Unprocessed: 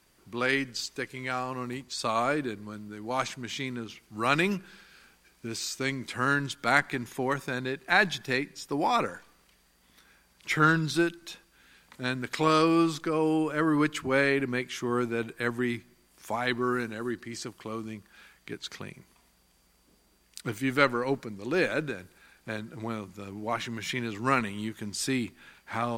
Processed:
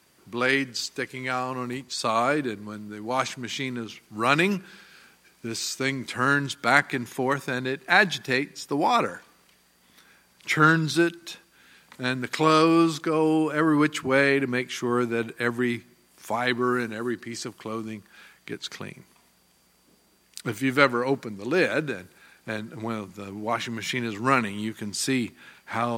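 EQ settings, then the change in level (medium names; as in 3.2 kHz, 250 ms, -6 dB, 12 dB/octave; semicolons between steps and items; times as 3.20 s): high-pass 96 Hz; +4.0 dB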